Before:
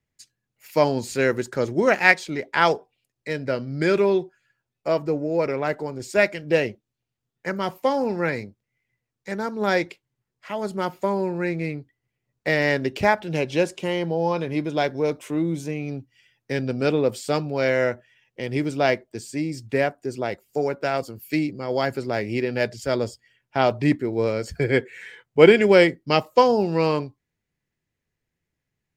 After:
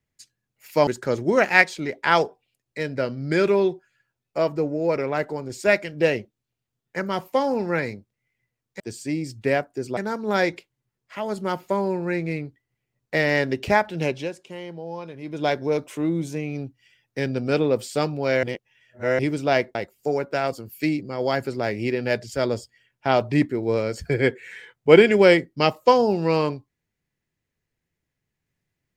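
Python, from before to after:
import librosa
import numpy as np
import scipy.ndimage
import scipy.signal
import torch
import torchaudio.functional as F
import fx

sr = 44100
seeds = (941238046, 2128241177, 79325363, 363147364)

y = fx.edit(x, sr, fx.cut(start_s=0.87, length_s=0.5),
    fx.fade_down_up(start_s=13.43, length_s=1.34, db=-11.0, fade_s=0.19),
    fx.reverse_span(start_s=17.76, length_s=0.76),
    fx.move(start_s=19.08, length_s=1.17, to_s=9.3), tone=tone)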